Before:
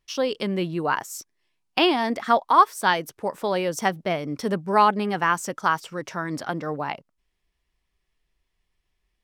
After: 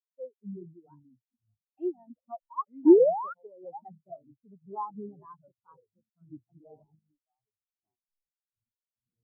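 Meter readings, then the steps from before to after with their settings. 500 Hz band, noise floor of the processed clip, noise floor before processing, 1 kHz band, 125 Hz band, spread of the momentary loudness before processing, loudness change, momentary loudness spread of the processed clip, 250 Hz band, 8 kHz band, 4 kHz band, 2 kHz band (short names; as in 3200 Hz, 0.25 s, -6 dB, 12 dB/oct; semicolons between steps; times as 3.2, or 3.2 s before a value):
-2.5 dB, under -85 dBFS, -76 dBFS, -17.5 dB, under -15 dB, 12 LU, -2.0 dB, 25 LU, -1.5 dB, under -40 dB, under -40 dB, under -35 dB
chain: gate -33 dBFS, range -13 dB; power-law curve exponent 0.5; echoes that change speed 0.29 s, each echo -5 st, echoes 3, each echo -6 dB; painted sound rise, 2.85–3.34, 280–1500 Hz -11 dBFS; backlash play -13.5 dBFS; spectral expander 4:1; gain -7 dB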